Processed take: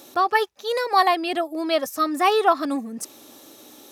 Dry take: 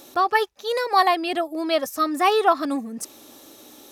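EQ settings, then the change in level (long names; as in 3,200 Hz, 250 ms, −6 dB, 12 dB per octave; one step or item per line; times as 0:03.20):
high-pass filter 82 Hz
0.0 dB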